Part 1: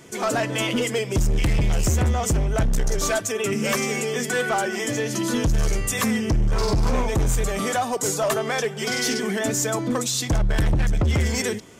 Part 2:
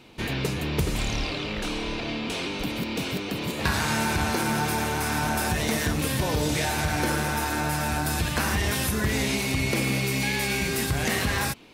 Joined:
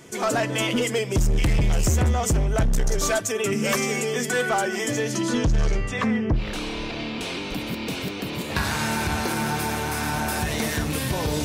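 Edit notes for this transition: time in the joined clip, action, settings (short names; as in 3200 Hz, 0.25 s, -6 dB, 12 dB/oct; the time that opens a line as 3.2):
part 1
5.11–6.47 LPF 10000 Hz -> 1400 Hz
6.4 switch to part 2 from 1.49 s, crossfade 0.14 s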